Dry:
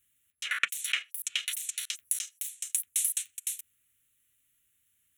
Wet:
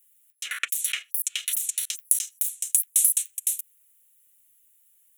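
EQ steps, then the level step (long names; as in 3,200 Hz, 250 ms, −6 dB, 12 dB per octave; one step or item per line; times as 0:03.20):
high-pass filter 75 Hz
RIAA equalisation recording
parametric band 410 Hz +8 dB 2.1 octaves
−5.0 dB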